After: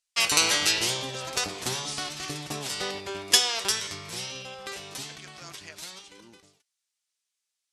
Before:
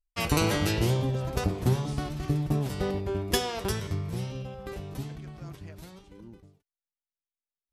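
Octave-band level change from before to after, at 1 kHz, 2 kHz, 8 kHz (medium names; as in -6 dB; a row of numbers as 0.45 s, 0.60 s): +1.0 dB, +7.0 dB, +12.5 dB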